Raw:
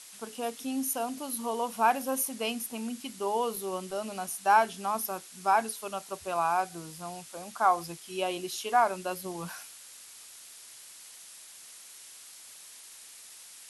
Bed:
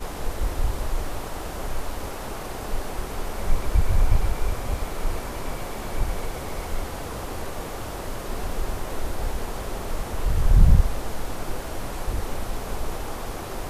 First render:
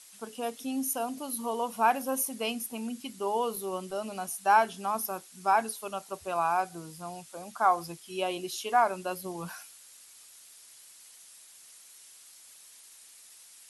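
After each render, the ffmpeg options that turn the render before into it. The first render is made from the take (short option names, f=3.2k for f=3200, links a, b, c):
-af "afftdn=nr=6:nf=-50"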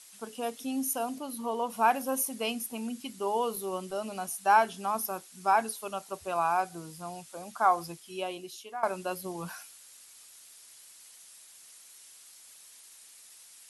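-filter_complex "[0:a]asettb=1/sr,asplit=3[a][b][c];[a]atrim=end=1.184[d];[b]atrim=start=1.18:end=1.7,asetpts=PTS-STARTPTS,afade=t=in:d=0.004:c=qsin,afade=t=out:st=0.516:d=0.004:c=qsin,highshelf=f=5.2k:g=-8[e];[c]atrim=start=1.696[f];[d][e]acrossfade=d=0.004:c1=hsin:c2=qsin[g];[g][f]acrossfade=d=0.004:c1=qsin:c2=hsin,asplit=2[h][i];[h]atrim=end=8.83,asetpts=PTS-STARTPTS,afade=t=out:st=7.83:d=1:silence=0.141254[j];[i]atrim=start=8.83,asetpts=PTS-STARTPTS,afade=t=in:d=0.004:c=hsin:silence=0.141254[k];[j][k]concat=n=2:v=0:a=1"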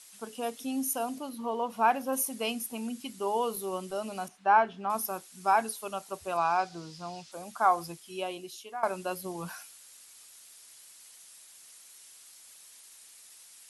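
-filter_complex "[0:a]asettb=1/sr,asplit=3[a][b][c];[a]atrim=end=1.294[d];[b]atrim=start=1.29:end=2.13,asetpts=PTS-STARTPTS,afade=t=in:d=0.004:c=qsin,afade=t=out:st=0.836:d=0.004:c=qsin,equalizer=f=10k:t=o:w=1.5:g=-9[e];[c]atrim=start=2.126[f];[d][e]acrossfade=d=0.004:c1=hsin:c2=qsin[g];[g][f]acrossfade=d=0.004:c1=qsin:c2=hsin,asettb=1/sr,asplit=3[h][i][j];[h]atrim=end=4.284[k];[i]atrim=start=4.28:end=4.9,asetpts=PTS-STARTPTS,afade=t=in:d=0.004:c=qsin,afade=t=out:st=0.616:d=0.004:c=qsin,lowpass=2.4k[l];[j]atrim=start=4.896[m];[k][l]acrossfade=d=0.004:c1=hsin:c2=qsin[n];[n][m]acrossfade=d=0.004:c1=qsin:c2=hsin,asettb=1/sr,asplit=3[o][p][q];[o]atrim=end=6.374[r];[p]atrim=start=6.37:end=7.32,asetpts=PTS-STARTPTS,afade=t=in:d=0.004:c=qsin,afade=t=out:st=0.946:d=0.004:c=qsin,lowpass=f=5k:t=q:w=2.1[s];[q]atrim=start=7.316[t];[r][s]acrossfade=d=0.004:c1=hsin:c2=qsin[u];[u][t]acrossfade=d=0.004:c1=qsin:c2=hsin"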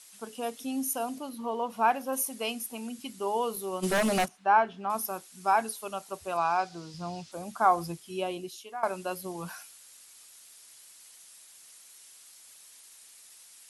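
-filter_complex "[0:a]asettb=1/sr,asplit=3[a][b][c];[a]atrim=end=1.924[d];[b]atrim=start=1.92:end=2.99,asetpts=PTS-STARTPTS,afade=t=in:d=0.004:c=qsin,afade=t=out:st=1.066:d=0.004:c=qsin,lowshelf=f=130:g=-11[e];[c]atrim=start=2.986[f];[d][e]acrossfade=d=0.004:c1=hsin:c2=qsin[g];[g][f]acrossfade=d=0.004:c1=qsin:c2=hsin,asplit=3[h][i][j];[h]afade=t=out:st=3.82:d=0.02[k];[i]aeval=exprs='0.0841*sin(PI/2*3.55*val(0)/0.0841)':c=same,afade=t=in:st=3.82:d=0.02,afade=t=out:st=4.24:d=0.02[l];[j]afade=t=in:st=4.24:d=0.02[m];[k][l][m]amix=inputs=3:normalize=0,asettb=1/sr,asplit=3[n][o][p];[n]atrim=end=6.944[q];[o]atrim=start=6.94:end=8.49,asetpts=PTS-STARTPTS,afade=t=in:d=0.004:c=qsin,afade=t=out:st=1.546:d=0.004:c=qsin,lowshelf=f=340:g=9[r];[p]atrim=start=8.486[s];[q][r]acrossfade=d=0.004:c1=hsin:c2=qsin[t];[t][s]acrossfade=d=0.004:c1=qsin:c2=hsin"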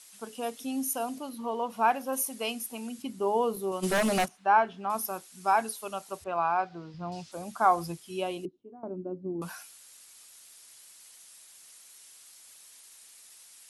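-filter_complex "[0:a]asettb=1/sr,asplit=3[a][b][c];[a]atrim=end=3.024[d];[b]atrim=start=3.02:end=3.72,asetpts=PTS-STARTPTS,afade=t=in:d=0.004:c=qsin,afade=t=out:st=0.696:d=0.004:c=qsin,tiltshelf=f=1.1k:g=5.5[e];[c]atrim=start=3.716[f];[d][e]acrossfade=d=0.004:c1=hsin:c2=qsin[g];[g][f]acrossfade=d=0.004:c1=qsin:c2=hsin,asettb=1/sr,asplit=3[h][i][j];[h]atrim=end=6.244[k];[i]atrim=start=6.24:end=7.12,asetpts=PTS-STARTPTS,afade=t=in:d=0.004:c=qsin,afade=t=out:st=0.876:d=0.004:c=qsin,lowpass=2.4k[l];[j]atrim=start=7.116[m];[k][l]acrossfade=d=0.004:c1=hsin:c2=qsin[n];[n][m]acrossfade=d=0.004:c1=qsin:c2=hsin,asettb=1/sr,asplit=3[o][p][q];[o]atrim=end=8.454[r];[p]atrim=start=8.45:end=9.42,asetpts=PTS-STARTPTS,afade=t=in:d=0.004:c=qsin,afade=t=out:st=0.966:d=0.004:c=qsin,lowpass=f=300:t=q:w=3.2[s];[q]atrim=start=9.416[t];[r][s]acrossfade=d=0.004:c1=hsin:c2=qsin[u];[u][t]acrossfade=d=0.004:c1=qsin:c2=hsin"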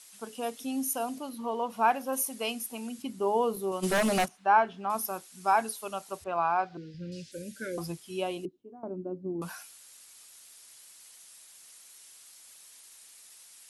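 -filter_complex "[0:a]asettb=1/sr,asplit=3[a][b][c];[a]atrim=end=6.774[d];[b]atrim=start=6.77:end=7.78,asetpts=PTS-STARTPTS,afade=t=in:d=0.004:c=qsin,afade=t=out:st=1.006:d=0.004:c=qsin,asuperstop=centerf=930:order=20:qfactor=1[e];[c]atrim=start=7.776[f];[d][e]acrossfade=d=0.004:c1=hsin:c2=qsin[g];[g][f]acrossfade=d=0.004:c1=qsin:c2=hsin"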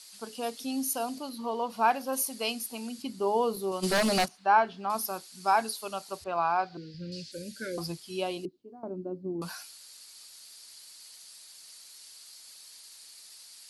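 -af "equalizer=f=4.5k:t=o:w=0.4:g=12.5"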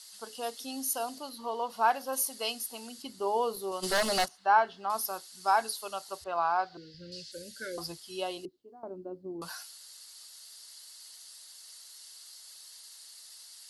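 -af "equalizer=f=190:t=o:w=1.7:g=-10.5,bandreject=f=2.4k:w=6.1"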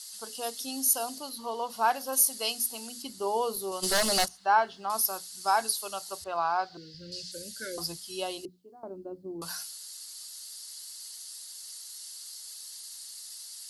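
-af "bass=f=250:g=4,treble=f=4k:g=8,bandreject=f=60:t=h:w=6,bandreject=f=120:t=h:w=6,bandreject=f=180:t=h:w=6,bandreject=f=240:t=h:w=6"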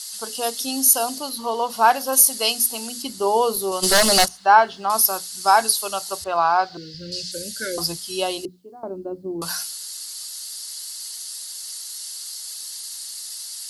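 -af "volume=10dB,alimiter=limit=-1dB:level=0:latency=1"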